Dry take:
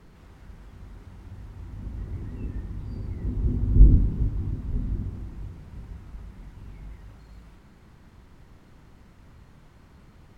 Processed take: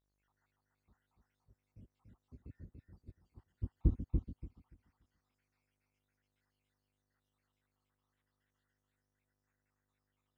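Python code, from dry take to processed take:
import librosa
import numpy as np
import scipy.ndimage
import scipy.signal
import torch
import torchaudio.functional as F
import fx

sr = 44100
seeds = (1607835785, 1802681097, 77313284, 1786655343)

p1 = fx.spec_dropout(x, sr, seeds[0], share_pct=84)
p2 = fx.filter_sweep_highpass(p1, sr, from_hz=62.0, to_hz=1500.0, start_s=3.9, end_s=4.89, q=0.79)
p3 = fx.dmg_buzz(p2, sr, base_hz=50.0, harmonics=40, level_db=-66.0, tilt_db=-6, odd_only=False)
p4 = p3 + fx.echo_feedback(p3, sr, ms=288, feedback_pct=32, wet_db=-3, dry=0)
p5 = fx.upward_expand(p4, sr, threshold_db=-46.0, expansion=1.5)
y = p5 * 10.0 ** (-5.5 / 20.0)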